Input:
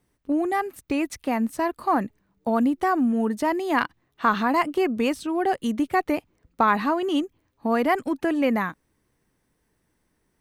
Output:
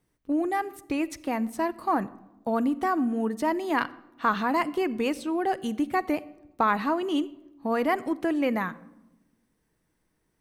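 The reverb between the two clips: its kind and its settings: simulated room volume 3700 m³, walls furnished, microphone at 0.6 m; trim -3.5 dB

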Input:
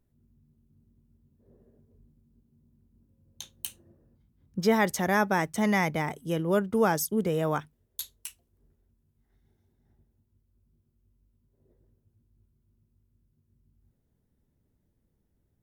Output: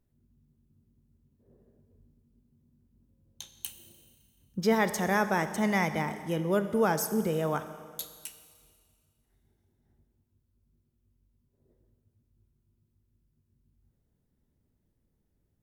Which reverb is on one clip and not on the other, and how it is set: Schroeder reverb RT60 1.9 s, combs from 29 ms, DRR 10 dB; trim -2 dB

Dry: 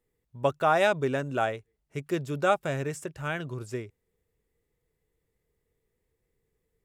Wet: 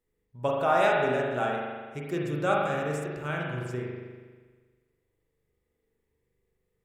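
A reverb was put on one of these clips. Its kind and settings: spring tank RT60 1.5 s, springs 40 ms, chirp 55 ms, DRR -2.5 dB; trim -4 dB

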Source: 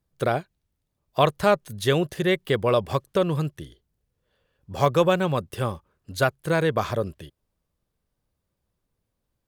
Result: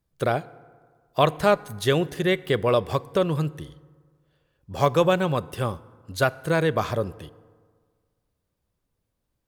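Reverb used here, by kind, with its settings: FDN reverb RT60 1.7 s, low-frequency decay 1×, high-frequency decay 0.5×, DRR 18 dB

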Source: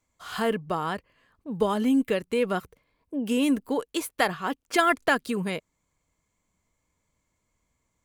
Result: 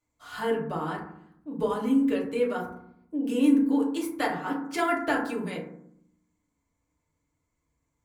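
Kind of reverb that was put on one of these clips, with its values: FDN reverb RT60 0.68 s, low-frequency decay 1.6×, high-frequency decay 0.35×, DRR -3.5 dB; trim -9 dB

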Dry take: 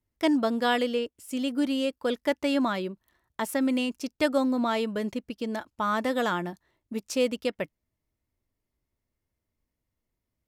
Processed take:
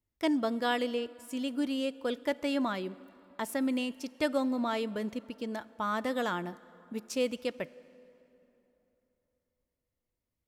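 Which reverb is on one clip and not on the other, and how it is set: plate-style reverb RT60 3.4 s, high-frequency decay 0.65×, DRR 19 dB; trim -5 dB

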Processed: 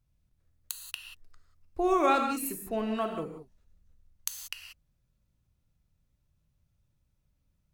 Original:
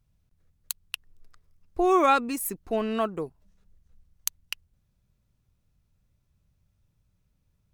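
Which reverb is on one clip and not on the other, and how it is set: gated-style reverb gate 210 ms flat, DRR 4 dB; trim -5 dB

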